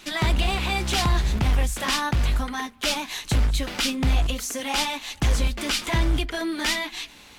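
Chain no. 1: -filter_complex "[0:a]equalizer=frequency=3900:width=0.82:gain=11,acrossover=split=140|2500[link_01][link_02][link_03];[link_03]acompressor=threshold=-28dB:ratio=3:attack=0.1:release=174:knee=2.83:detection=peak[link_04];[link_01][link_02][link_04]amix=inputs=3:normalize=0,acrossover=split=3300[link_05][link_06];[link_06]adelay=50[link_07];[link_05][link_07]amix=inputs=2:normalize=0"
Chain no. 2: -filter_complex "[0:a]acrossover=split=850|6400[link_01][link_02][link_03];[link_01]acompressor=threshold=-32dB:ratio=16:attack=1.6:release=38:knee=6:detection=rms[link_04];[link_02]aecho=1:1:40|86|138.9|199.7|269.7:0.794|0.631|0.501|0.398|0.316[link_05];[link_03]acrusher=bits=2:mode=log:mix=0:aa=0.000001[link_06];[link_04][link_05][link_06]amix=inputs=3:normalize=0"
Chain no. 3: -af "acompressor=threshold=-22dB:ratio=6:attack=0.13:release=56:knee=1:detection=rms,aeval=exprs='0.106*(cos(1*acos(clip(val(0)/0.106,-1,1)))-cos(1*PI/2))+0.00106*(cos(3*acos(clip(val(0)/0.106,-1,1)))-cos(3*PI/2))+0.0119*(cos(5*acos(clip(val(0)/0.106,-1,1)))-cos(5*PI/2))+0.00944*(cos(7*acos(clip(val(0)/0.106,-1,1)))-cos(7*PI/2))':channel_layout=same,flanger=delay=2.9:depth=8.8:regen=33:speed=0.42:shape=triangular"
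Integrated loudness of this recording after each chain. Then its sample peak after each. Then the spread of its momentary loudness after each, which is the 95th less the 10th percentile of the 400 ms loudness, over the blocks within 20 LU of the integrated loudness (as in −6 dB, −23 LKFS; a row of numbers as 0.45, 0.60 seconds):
−24.5, −24.5, −33.0 LKFS; −10.0, −9.5, −22.5 dBFS; 4, 7, 3 LU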